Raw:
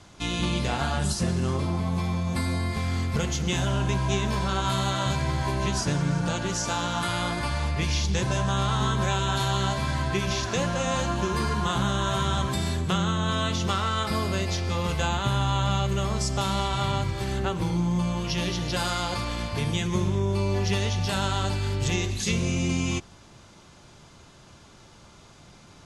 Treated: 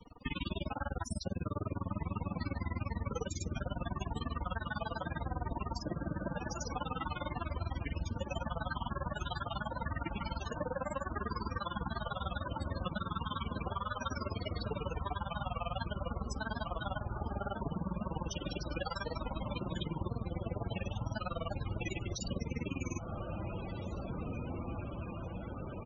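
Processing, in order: comb 3.7 ms, depth 55%; dynamic EQ 240 Hz, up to -5 dB, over -43 dBFS, Q 4.2; grains 40 ms, grains 20/s, pitch spread up and down by 3 st; on a send: diffused feedback echo 1.759 s, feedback 73%, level -10 dB; on the sum: compressor 12:1, threshold -33 dBFS, peak gain reduction 11 dB; loudest bins only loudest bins 32; gain +1 dB

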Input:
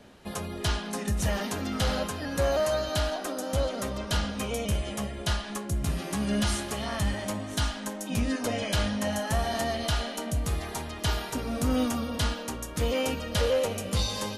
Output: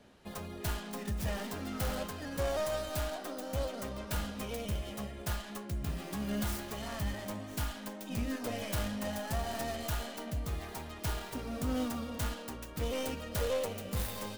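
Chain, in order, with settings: tracing distortion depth 0.49 ms; gain -7.5 dB

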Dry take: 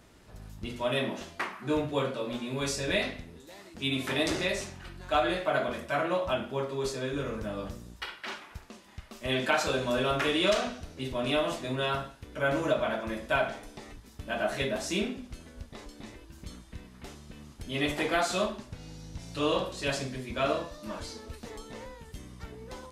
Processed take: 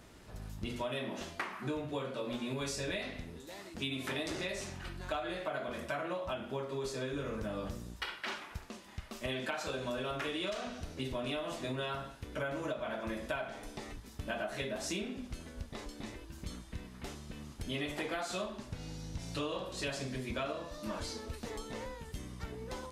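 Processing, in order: compressor 10:1, threshold -35 dBFS, peak gain reduction 15 dB; gain +1 dB

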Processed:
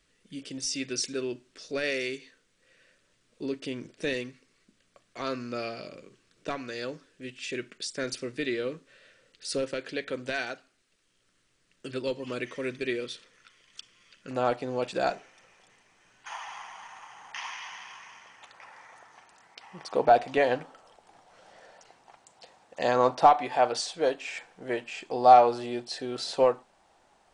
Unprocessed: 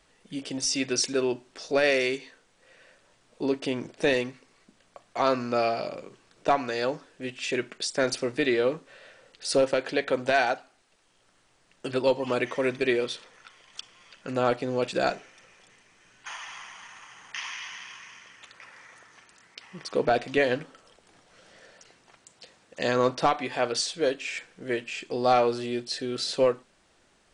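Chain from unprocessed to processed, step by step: bell 810 Hz -12.5 dB 0.85 oct, from 14.31 s +5 dB, from 16.32 s +13.5 dB; gain -4.5 dB

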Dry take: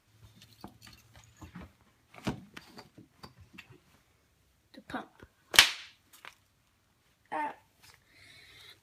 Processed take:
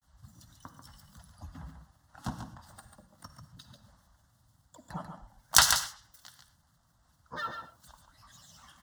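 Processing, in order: bell 81 Hz +7 dB 0.3 oct; grains, spray 10 ms, pitch spread up and down by 12 st; fixed phaser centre 1000 Hz, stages 4; echo 0.141 s -7 dB; reverb, pre-delay 45 ms, DRR 11 dB; gain +3.5 dB

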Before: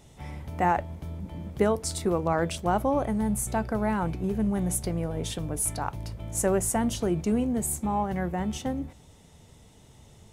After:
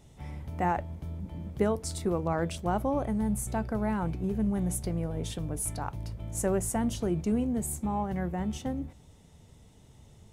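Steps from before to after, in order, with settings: low shelf 320 Hz +5 dB; gain -5.5 dB

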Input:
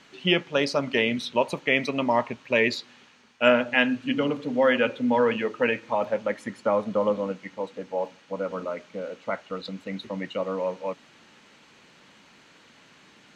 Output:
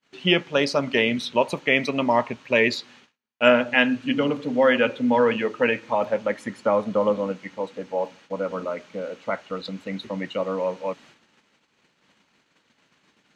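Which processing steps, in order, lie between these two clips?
gate -52 dBFS, range -35 dB; gain +2.5 dB

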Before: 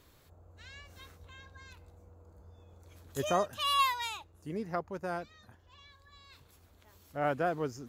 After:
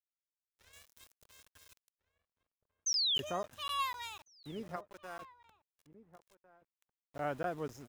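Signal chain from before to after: 4.76–5.22 HPF 850 Hz 6 dB/oct; sample gate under -46.5 dBFS; notch 4500 Hz, Q 16; 2.86–3.2 painted sound fall 2800–6400 Hz -22 dBFS; outdoor echo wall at 240 m, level -16 dB; vocal rider within 3 dB 2 s; 0.73–2.55 high shelf 3800 Hz +12 dB; crackling interface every 0.25 s, samples 512, zero, from 0.93; gain -8 dB

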